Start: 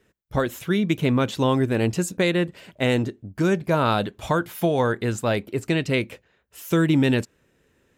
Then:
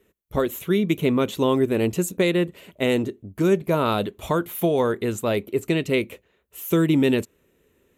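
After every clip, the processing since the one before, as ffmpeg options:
-af "equalizer=f=125:t=o:w=0.33:g=-7,equalizer=f=400:t=o:w=0.33:g=5,equalizer=f=800:t=o:w=0.33:g=-4,equalizer=f=1.6k:t=o:w=0.33:g=-7,equalizer=f=5k:t=o:w=0.33:g=-9,equalizer=f=12.5k:t=o:w=0.33:g=10"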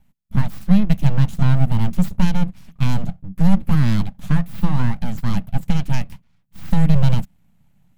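-af "aeval=exprs='abs(val(0))':c=same,lowshelf=f=270:t=q:w=3:g=13,volume=-4dB"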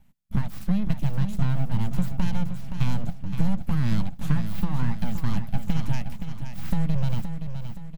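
-af "acompressor=threshold=-18dB:ratio=6,aecho=1:1:521|1042|1563|2084|2605:0.376|0.173|0.0795|0.0366|0.0168"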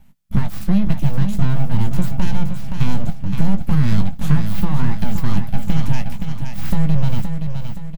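-filter_complex "[0:a]asplit=2[a][b];[b]volume=17.5dB,asoftclip=hard,volume=-17.5dB,volume=-6.5dB[c];[a][c]amix=inputs=2:normalize=0,asplit=2[d][e];[e]adelay=20,volume=-10dB[f];[d][f]amix=inputs=2:normalize=0,volume=4.5dB"

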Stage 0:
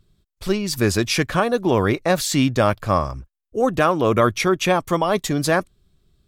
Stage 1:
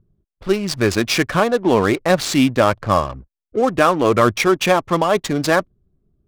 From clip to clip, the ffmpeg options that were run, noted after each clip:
-af "aphaser=in_gain=1:out_gain=1:delay=4.8:decay=0.24:speed=1.4:type=triangular,lowshelf=f=85:g=-9.5,adynamicsmooth=sensitivity=5.5:basefreq=570,volume=3dB"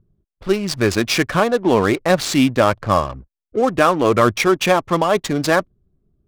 -af anull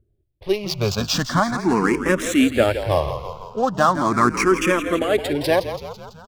-filter_complex "[0:a]asplit=8[a][b][c][d][e][f][g][h];[b]adelay=166,afreqshift=-40,volume=-10.5dB[i];[c]adelay=332,afreqshift=-80,volume=-15.2dB[j];[d]adelay=498,afreqshift=-120,volume=-20dB[k];[e]adelay=664,afreqshift=-160,volume=-24.7dB[l];[f]adelay=830,afreqshift=-200,volume=-29.4dB[m];[g]adelay=996,afreqshift=-240,volume=-34.2dB[n];[h]adelay=1162,afreqshift=-280,volume=-38.9dB[o];[a][i][j][k][l][m][n][o]amix=inputs=8:normalize=0,asplit=2[p][q];[q]afreqshift=0.39[r];[p][r]amix=inputs=2:normalize=1"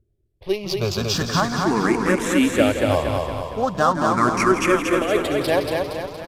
-filter_complex "[0:a]asplit=2[a][b];[b]aecho=0:1:233|466|699|932|1165|1398:0.631|0.315|0.158|0.0789|0.0394|0.0197[c];[a][c]amix=inputs=2:normalize=0,aresample=32000,aresample=44100,volume=-2dB"

